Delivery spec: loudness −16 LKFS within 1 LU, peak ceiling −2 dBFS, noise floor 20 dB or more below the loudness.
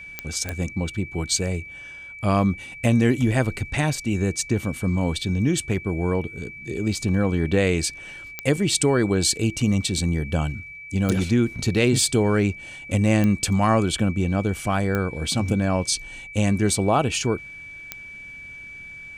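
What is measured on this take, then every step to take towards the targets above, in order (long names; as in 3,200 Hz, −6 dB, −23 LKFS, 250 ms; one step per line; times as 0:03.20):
number of clicks 7; interfering tone 2,300 Hz; level of the tone −37 dBFS; integrated loudness −23.0 LKFS; sample peak −6.5 dBFS; target loudness −16.0 LKFS
→ click removal
notch filter 2,300 Hz, Q 30
level +7 dB
brickwall limiter −2 dBFS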